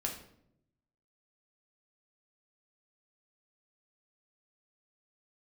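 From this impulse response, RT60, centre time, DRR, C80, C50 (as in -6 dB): 0.75 s, 25 ms, 0.0 dB, 11.0 dB, 7.0 dB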